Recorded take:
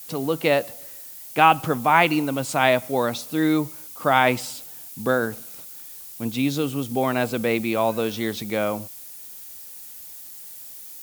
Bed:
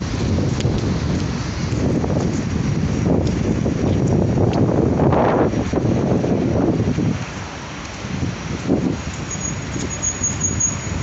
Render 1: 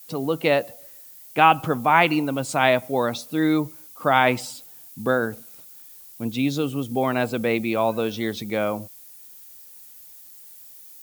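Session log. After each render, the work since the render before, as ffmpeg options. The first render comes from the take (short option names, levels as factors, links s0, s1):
-af "afftdn=nr=7:nf=-40"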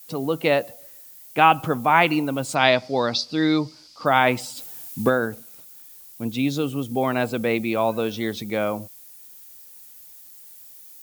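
-filter_complex "[0:a]asettb=1/sr,asplit=3[s0][s1][s2];[s0]atrim=end=2.554[s3];[s1]atrim=start=2.55:end=4.06,asetpts=PTS-STARTPTS,afade=t=in:d=0.004:c=qsin,afade=t=out:st=1.506:d=0.004:c=qsin,lowpass=f=4800:t=q:w=8.9[s4];[s2]atrim=start=4.056[s5];[s3][s4]acrossfade=d=0.004:c1=hsin:c2=qsin[s6];[s6][s5]acrossfade=d=0.004:c1=qsin:c2=hsin,asplit=3[s7][s8][s9];[s7]afade=t=out:st=4.56:d=0.02[s10];[s8]acontrast=73,afade=t=in:st=4.56:d=0.02,afade=t=out:st=5.08:d=0.02[s11];[s9]afade=t=in:st=5.08:d=0.02[s12];[s10][s11][s12]amix=inputs=3:normalize=0"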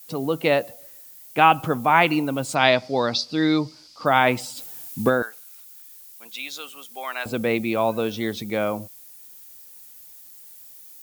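-filter_complex "[0:a]asettb=1/sr,asplit=3[s0][s1][s2];[s0]atrim=end=5.224[s3];[s1]atrim=start=5.22:end=7.26,asetpts=PTS-STARTPTS,afade=t=in:d=0.004:c=qsin,afade=t=out:st=2.036:d=0.004:c=qsin,highpass=1200[s4];[s2]atrim=start=7.256[s5];[s3][s4]acrossfade=d=0.004:c1=hsin:c2=qsin[s6];[s6][s5]acrossfade=d=0.004:c1=qsin:c2=hsin"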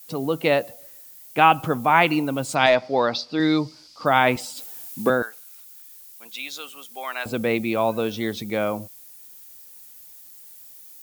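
-filter_complex "[0:a]asettb=1/sr,asplit=3[s0][s1][s2];[s0]atrim=end=2.664[s3];[s1]atrim=start=2.66:end=3.4,asetpts=PTS-STARTPTS,afade=t=in:d=0.004:c=qsin,afade=t=out:st=0.736:d=0.004:c=qsin,asplit=2[s4][s5];[s5]highpass=f=720:p=1,volume=3.55,asoftclip=type=tanh:threshold=0.841[s6];[s4][s6]amix=inputs=2:normalize=0,lowpass=f=1300:p=1,volume=0.501[s7];[s2]atrim=start=3.396[s8];[s3][s7]acrossfade=d=0.004:c1=hsin:c2=qsin[s9];[s9][s8]acrossfade=d=0.004:c1=qsin:c2=hsin,asettb=1/sr,asplit=3[s10][s11][s12];[s10]atrim=end=4.364[s13];[s11]atrim=start=4.36:end=5.1,asetpts=PTS-STARTPTS,afade=t=in:d=0.004:c=qsin,afade=t=out:st=0.736:d=0.004:c=qsin,highpass=220[s14];[s12]atrim=start=5.096[s15];[s13][s14]acrossfade=d=0.004:c1=hsin:c2=qsin[s16];[s16][s15]acrossfade=d=0.004:c1=qsin:c2=hsin"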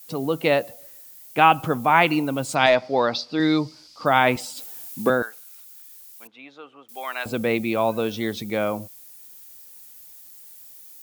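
-filter_complex "[0:a]asettb=1/sr,asplit=3[s0][s1][s2];[s0]atrim=end=6.274[s3];[s1]atrim=start=6.27:end=6.89,asetpts=PTS-STARTPTS,afade=t=in:d=0.004:c=qsin,afade=t=out:st=0.616:d=0.004:c=qsin,lowpass=1300[s4];[s2]atrim=start=6.886[s5];[s3][s4]acrossfade=d=0.004:c1=hsin:c2=qsin[s6];[s6][s5]acrossfade=d=0.004:c1=qsin:c2=hsin"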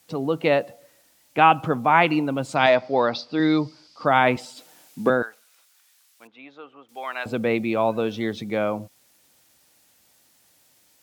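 -af "highpass=76,aemphasis=mode=reproduction:type=50fm"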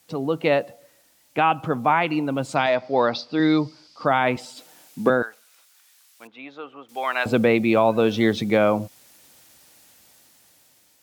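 -af "dynaudnorm=f=660:g=5:m=2.99,alimiter=limit=0.447:level=0:latency=1:release=357"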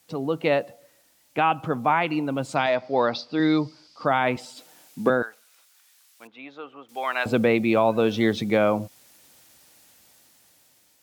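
-af "volume=0.794"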